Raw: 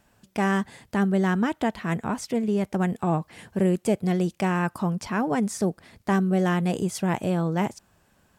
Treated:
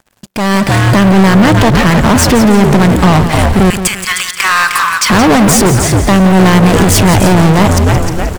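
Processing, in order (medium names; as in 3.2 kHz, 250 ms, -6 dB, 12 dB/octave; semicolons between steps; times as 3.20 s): frequency-shifting echo 308 ms, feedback 35%, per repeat -79 Hz, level -11 dB; peak limiter -18 dBFS, peak gain reduction 8 dB; 3.70–5.10 s: elliptic high-pass 1.1 kHz, stop band 40 dB; waveshaping leveller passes 5; level rider gain up to 11.5 dB; bit-crushed delay 172 ms, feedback 35%, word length 8-bit, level -10 dB; trim +2 dB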